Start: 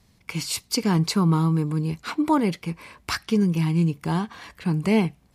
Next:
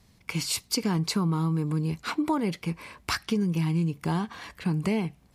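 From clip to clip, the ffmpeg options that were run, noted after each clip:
ffmpeg -i in.wav -af "acompressor=threshold=-23dB:ratio=5" out.wav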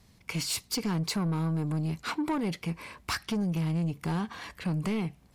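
ffmpeg -i in.wav -af "asoftclip=type=tanh:threshold=-24.5dB" out.wav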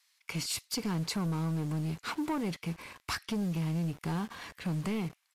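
ffmpeg -i in.wav -filter_complex "[0:a]acrossover=split=1200[link_01][link_02];[link_01]acrusher=bits=7:mix=0:aa=0.000001[link_03];[link_03][link_02]amix=inputs=2:normalize=0,aresample=32000,aresample=44100,volume=-3dB" out.wav

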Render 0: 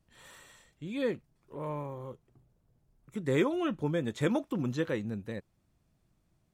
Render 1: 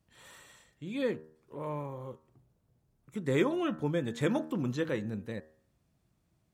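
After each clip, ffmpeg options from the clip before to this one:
ffmpeg -i in.wav -af "highpass=49,bandreject=frequency=78.11:width_type=h:width=4,bandreject=frequency=156.22:width_type=h:width=4,bandreject=frequency=234.33:width_type=h:width=4,bandreject=frequency=312.44:width_type=h:width=4,bandreject=frequency=390.55:width_type=h:width=4,bandreject=frequency=468.66:width_type=h:width=4,bandreject=frequency=546.77:width_type=h:width=4,bandreject=frequency=624.88:width_type=h:width=4,bandreject=frequency=702.99:width_type=h:width=4,bandreject=frequency=781.1:width_type=h:width=4,bandreject=frequency=859.21:width_type=h:width=4,bandreject=frequency=937.32:width_type=h:width=4,bandreject=frequency=1015.43:width_type=h:width=4,bandreject=frequency=1093.54:width_type=h:width=4,bandreject=frequency=1171.65:width_type=h:width=4,bandreject=frequency=1249.76:width_type=h:width=4,bandreject=frequency=1327.87:width_type=h:width=4,bandreject=frequency=1405.98:width_type=h:width=4,bandreject=frequency=1484.09:width_type=h:width=4,bandreject=frequency=1562.2:width_type=h:width=4,bandreject=frequency=1640.31:width_type=h:width=4,bandreject=frequency=1718.42:width_type=h:width=4,bandreject=frequency=1796.53:width_type=h:width=4,bandreject=frequency=1874.64:width_type=h:width=4" out.wav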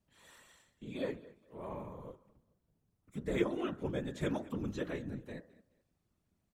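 ffmpeg -i in.wav -af "aecho=1:1:212|424:0.0944|0.0255,afftfilt=real='hypot(re,im)*cos(2*PI*random(0))':imag='hypot(re,im)*sin(2*PI*random(1))':win_size=512:overlap=0.75" out.wav

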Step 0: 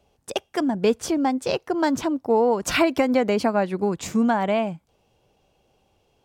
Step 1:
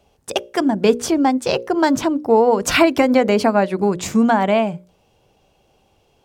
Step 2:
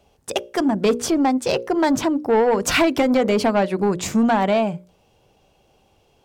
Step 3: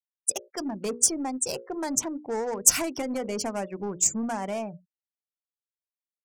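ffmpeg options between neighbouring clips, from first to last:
ffmpeg -i in.wav -af "bandreject=frequency=60:width_type=h:width=6,bandreject=frequency=120:width_type=h:width=6,bandreject=frequency=180:width_type=h:width=6,bandreject=frequency=240:width_type=h:width=6,bandreject=frequency=300:width_type=h:width=6,bandreject=frequency=360:width_type=h:width=6,bandreject=frequency=420:width_type=h:width=6,bandreject=frequency=480:width_type=h:width=6,bandreject=frequency=540:width_type=h:width=6,bandreject=frequency=600:width_type=h:width=6,volume=6dB" out.wav
ffmpeg -i in.wav -af "asoftclip=type=tanh:threshold=-11dB" out.wav
ffmpeg -i in.wav -af "afftfilt=real='re*gte(hypot(re,im),0.0355)':imag='im*gte(hypot(re,im),0.0355)':win_size=1024:overlap=0.75,aeval=exprs='0.316*(cos(1*acos(clip(val(0)/0.316,-1,1)))-cos(1*PI/2))+0.00708*(cos(6*acos(clip(val(0)/0.316,-1,1)))-cos(6*PI/2))+0.00501*(cos(7*acos(clip(val(0)/0.316,-1,1)))-cos(7*PI/2))+0.00398*(cos(8*acos(clip(val(0)/0.316,-1,1)))-cos(8*PI/2))':channel_layout=same,aexciter=amount=15:drive=7:freq=5800,volume=-13dB" out.wav

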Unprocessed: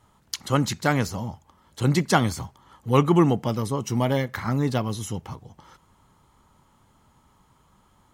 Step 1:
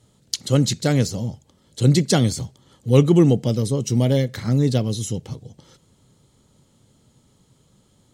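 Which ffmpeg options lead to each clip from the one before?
ffmpeg -i in.wav -af "equalizer=frequency=125:width_type=o:width=1:gain=10,equalizer=frequency=250:width_type=o:width=1:gain=5,equalizer=frequency=500:width_type=o:width=1:gain=10,equalizer=frequency=1000:width_type=o:width=1:gain=-10,equalizer=frequency=4000:width_type=o:width=1:gain=9,equalizer=frequency=8000:width_type=o:width=1:gain=10,volume=-4dB" out.wav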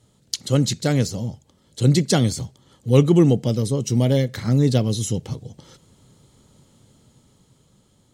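ffmpeg -i in.wav -af "dynaudnorm=framelen=380:gausssize=9:maxgain=8dB,volume=-1dB" out.wav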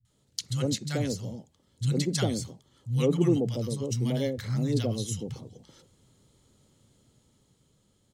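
ffmpeg -i in.wav -filter_complex "[0:a]acrossover=split=170|910[link_01][link_02][link_03];[link_03]adelay=50[link_04];[link_02]adelay=100[link_05];[link_01][link_05][link_04]amix=inputs=3:normalize=0,volume=-7.5dB" out.wav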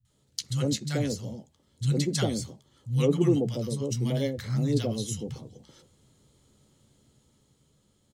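ffmpeg -i in.wav -filter_complex "[0:a]asplit=2[link_01][link_02];[link_02]adelay=14,volume=-11dB[link_03];[link_01][link_03]amix=inputs=2:normalize=0" out.wav

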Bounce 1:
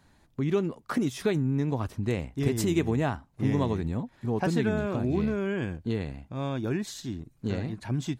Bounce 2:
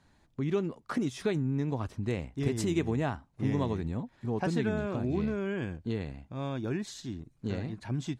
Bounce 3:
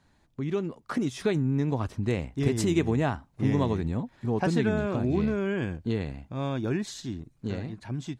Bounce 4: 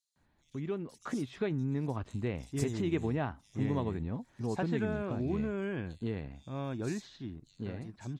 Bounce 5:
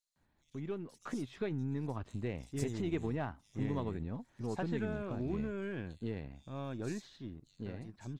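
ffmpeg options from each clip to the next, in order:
ffmpeg -i in.wav -af "lowpass=9300,volume=-3.5dB" out.wav
ffmpeg -i in.wav -af "dynaudnorm=framelen=120:gausssize=17:maxgain=4.5dB" out.wav
ffmpeg -i in.wav -filter_complex "[0:a]acrossover=split=4300[link_01][link_02];[link_01]adelay=160[link_03];[link_03][link_02]amix=inputs=2:normalize=0,volume=-7dB" out.wav
ffmpeg -i in.wav -af "aeval=exprs='if(lt(val(0),0),0.708*val(0),val(0))':channel_layout=same,volume=-2.5dB" out.wav

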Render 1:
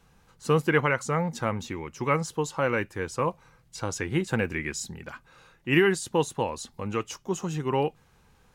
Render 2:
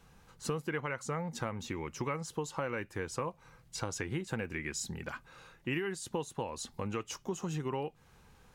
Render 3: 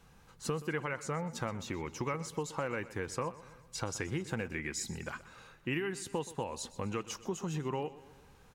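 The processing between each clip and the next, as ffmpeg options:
ffmpeg -i in.wav -af "acompressor=threshold=-33dB:ratio=6" out.wav
ffmpeg -i in.wav -af "aecho=1:1:125|250|375|500|625:0.141|0.0749|0.0397|0.021|0.0111" out.wav

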